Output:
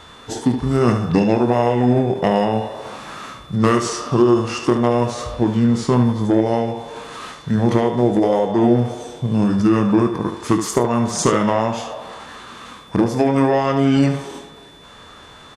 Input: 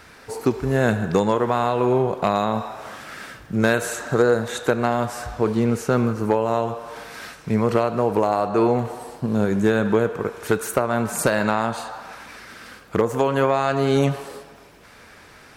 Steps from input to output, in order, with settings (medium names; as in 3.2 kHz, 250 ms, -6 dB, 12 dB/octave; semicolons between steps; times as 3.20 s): early reflections 25 ms -9.5 dB, 73 ms -9 dB; formant shift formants -5 st; whistle 3.5 kHz -49 dBFS; trim +3 dB